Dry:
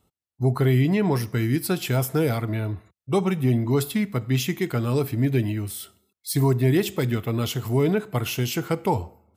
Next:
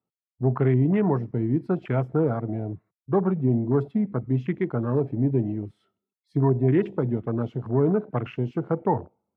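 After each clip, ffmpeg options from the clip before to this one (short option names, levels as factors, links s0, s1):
-af "highpass=f=120:w=0.5412,highpass=f=120:w=1.3066,afwtdn=0.0282,lowpass=1800"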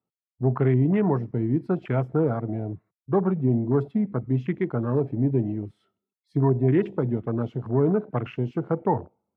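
-af anull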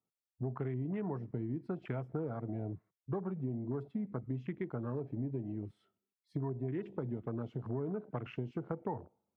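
-af "acompressor=threshold=0.0355:ratio=6,volume=0.531"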